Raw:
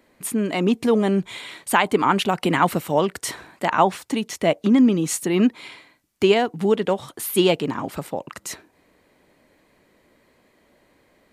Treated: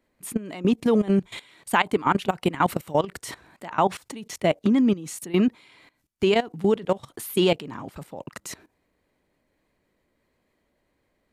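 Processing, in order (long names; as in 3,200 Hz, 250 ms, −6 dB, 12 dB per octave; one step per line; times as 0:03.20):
low-shelf EQ 99 Hz +10 dB
output level in coarse steps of 18 dB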